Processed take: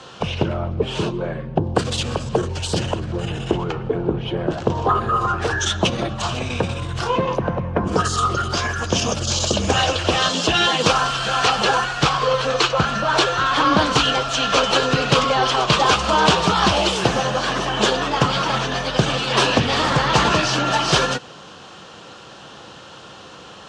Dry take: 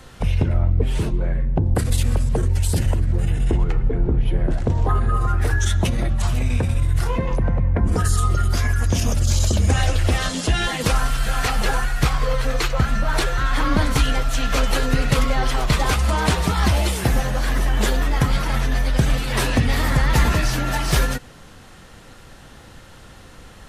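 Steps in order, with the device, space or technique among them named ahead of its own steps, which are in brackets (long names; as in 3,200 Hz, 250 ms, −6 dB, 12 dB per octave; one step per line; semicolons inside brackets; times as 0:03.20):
full-range speaker at full volume (highs frequency-modulated by the lows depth 0.23 ms; loudspeaker in its box 200–6,700 Hz, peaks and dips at 250 Hz −7 dB, 1,100 Hz +3 dB, 2,000 Hz −10 dB, 3,000 Hz +5 dB)
level +7 dB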